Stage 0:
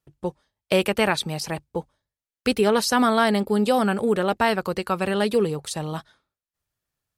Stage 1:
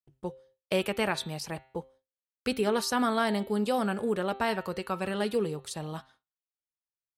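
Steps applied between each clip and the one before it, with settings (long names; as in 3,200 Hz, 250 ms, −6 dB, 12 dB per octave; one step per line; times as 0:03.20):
hum removal 131.5 Hz, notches 33
noise gate with hold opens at −44 dBFS
level −7.5 dB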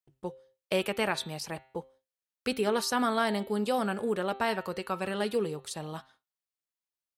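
low-shelf EQ 160 Hz −6 dB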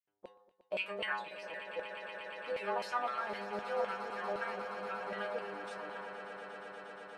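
stiff-string resonator 99 Hz, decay 0.52 s, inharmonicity 0.002
auto-filter band-pass saw down 3.9 Hz 560–2,600 Hz
echo that builds up and dies away 118 ms, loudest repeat 8, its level −14 dB
level +11.5 dB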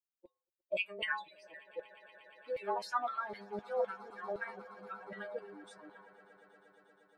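spectral dynamics exaggerated over time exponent 2
level +3.5 dB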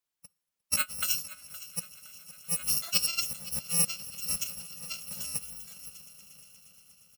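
samples in bit-reversed order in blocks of 128 samples
repeating echo 516 ms, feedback 43%, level −17 dB
on a send at −20 dB: convolution reverb RT60 0.30 s, pre-delay 3 ms
on the sum: level +7 dB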